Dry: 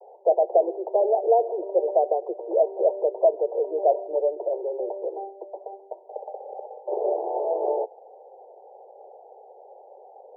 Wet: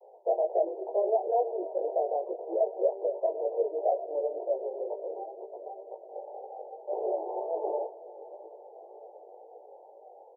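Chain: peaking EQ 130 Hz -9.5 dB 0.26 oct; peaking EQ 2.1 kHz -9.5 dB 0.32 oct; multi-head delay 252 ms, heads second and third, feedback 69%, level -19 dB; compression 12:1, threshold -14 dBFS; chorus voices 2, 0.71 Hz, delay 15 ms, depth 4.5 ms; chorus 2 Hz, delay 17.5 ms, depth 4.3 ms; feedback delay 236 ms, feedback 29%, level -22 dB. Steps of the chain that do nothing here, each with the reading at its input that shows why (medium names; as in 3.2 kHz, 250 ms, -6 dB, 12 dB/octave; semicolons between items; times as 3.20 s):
peaking EQ 130 Hz: input has nothing below 300 Hz; peaking EQ 2.1 kHz: input has nothing above 960 Hz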